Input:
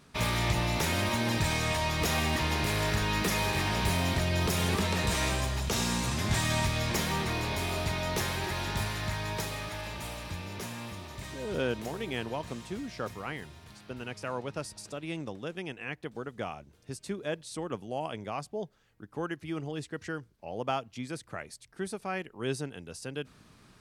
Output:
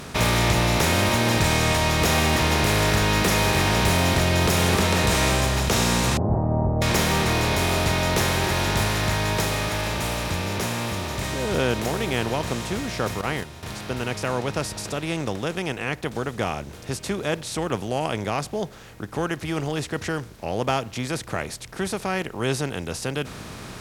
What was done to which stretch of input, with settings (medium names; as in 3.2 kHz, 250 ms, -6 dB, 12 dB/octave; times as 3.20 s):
6.17–6.82 s: steep low-pass 840 Hz 48 dB/octave
13.21–13.63 s: gate -42 dBFS, range -13 dB
whole clip: spectral levelling over time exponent 0.6; trim +5 dB